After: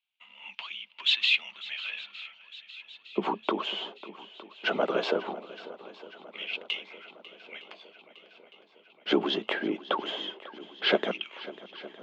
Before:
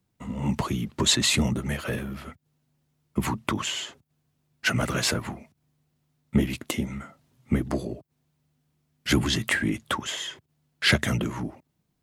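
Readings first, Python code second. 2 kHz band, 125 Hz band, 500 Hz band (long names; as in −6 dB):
−3.5 dB, −22.5 dB, +2.5 dB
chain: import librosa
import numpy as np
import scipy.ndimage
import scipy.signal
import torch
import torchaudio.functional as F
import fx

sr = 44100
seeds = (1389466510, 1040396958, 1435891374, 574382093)

y = fx.peak_eq(x, sr, hz=760.0, db=7.0, octaves=0.97)
y = fx.filter_lfo_highpass(y, sr, shape='square', hz=0.18, low_hz=410.0, high_hz=2500.0, q=3.2)
y = fx.cabinet(y, sr, low_hz=160.0, low_slope=24, high_hz=3600.0, hz=(190.0, 1900.0, 3200.0), db=(9, -9, 5))
y = fx.echo_swing(y, sr, ms=910, ratio=1.5, feedback_pct=58, wet_db=-17.5)
y = F.gain(torch.from_numpy(y), -4.5).numpy()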